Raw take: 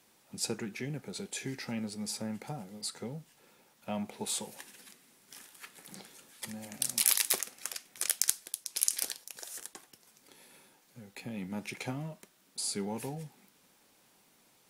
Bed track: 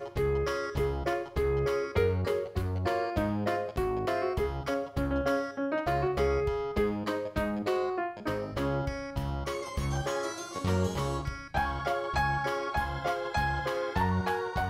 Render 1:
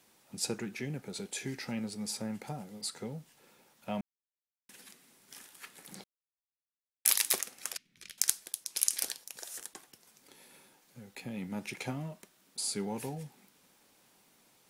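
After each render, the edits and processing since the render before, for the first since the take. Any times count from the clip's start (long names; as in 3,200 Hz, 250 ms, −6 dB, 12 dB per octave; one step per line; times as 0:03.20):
0:04.01–0:04.69: silence
0:06.04–0:07.05: silence
0:07.77–0:08.18: drawn EQ curve 190 Hz 0 dB, 410 Hz −14 dB, 720 Hz −26 dB, 2,300 Hz −9 dB, 4,200 Hz −11 dB, 9,200 Hz −24 dB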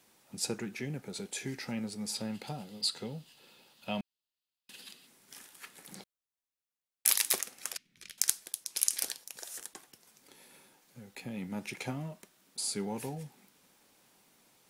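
0:02.15–0:05.07: gain on a spectral selection 2,500–5,100 Hz +9 dB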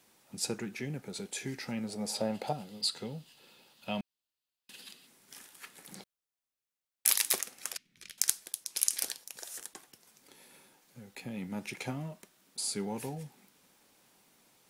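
0:01.89–0:02.53: parametric band 630 Hz +14 dB 1.1 octaves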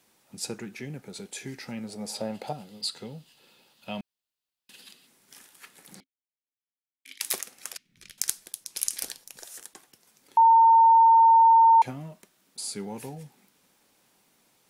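0:06.00–0:07.21: formant filter i
0:07.89–0:09.46: low-shelf EQ 200 Hz +9.5 dB
0:10.37–0:11.82: beep over 909 Hz −13 dBFS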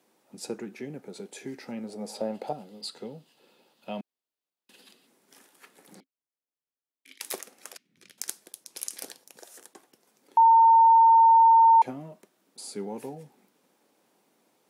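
high-pass filter 300 Hz 12 dB per octave
tilt shelving filter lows +7 dB, about 890 Hz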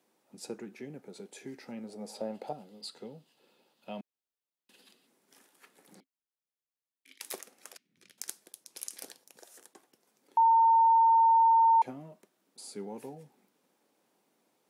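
level −5.5 dB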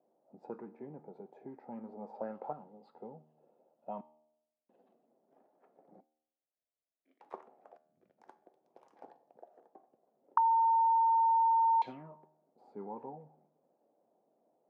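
tuned comb filter 77 Hz, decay 0.84 s, harmonics all, mix 50%
envelope-controlled low-pass 650–3,800 Hz up, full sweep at −30 dBFS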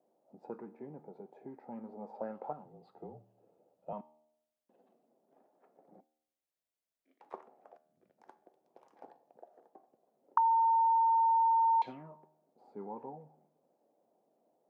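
0:02.65–0:03.93: frequency shifter −39 Hz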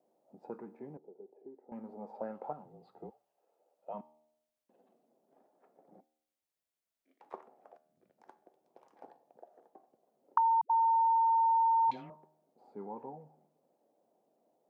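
0:00.97–0:01.72: resonant band-pass 390 Hz, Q 2.8
0:03.09–0:03.93: high-pass filter 1,400 Hz → 390 Hz
0:10.61–0:12.10: all-pass dispersion highs, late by 97 ms, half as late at 310 Hz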